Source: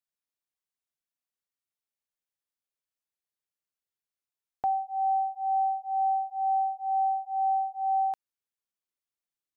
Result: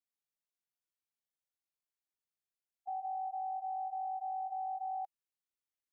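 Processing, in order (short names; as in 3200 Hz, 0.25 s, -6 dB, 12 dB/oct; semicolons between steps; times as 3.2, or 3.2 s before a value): harmonic-percussive split percussive -17 dB; limiter -33 dBFS, peak gain reduction 11.5 dB; granular stretch 0.62×, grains 41 ms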